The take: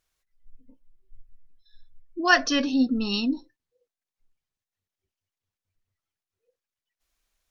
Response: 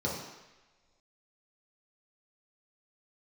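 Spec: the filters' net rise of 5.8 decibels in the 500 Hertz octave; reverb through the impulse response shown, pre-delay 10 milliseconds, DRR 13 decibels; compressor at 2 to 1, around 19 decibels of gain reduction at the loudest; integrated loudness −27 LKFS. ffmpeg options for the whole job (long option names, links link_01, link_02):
-filter_complex "[0:a]equalizer=frequency=500:width_type=o:gain=8.5,acompressor=threshold=-48dB:ratio=2,asplit=2[link_01][link_02];[1:a]atrim=start_sample=2205,adelay=10[link_03];[link_02][link_03]afir=irnorm=-1:irlink=0,volume=-20.5dB[link_04];[link_01][link_04]amix=inputs=2:normalize=0,volume=10.5dB"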